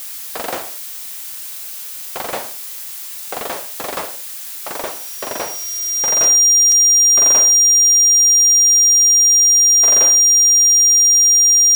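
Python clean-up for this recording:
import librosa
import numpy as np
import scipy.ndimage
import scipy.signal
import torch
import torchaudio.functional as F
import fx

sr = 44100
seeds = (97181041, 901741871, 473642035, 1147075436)

y = fx.notch(x, sr, hz=5700.0, q=30.0)
y = fx.fix_interpolate(y, sr, at_s=(0.63, 1.59, 4.03, 6.24, 6.72), length_ms=1.7)
y = fx.noise_reduce(y, sr, print_start_s=2.79, print_end_s=3.29, reduce_db=30.0)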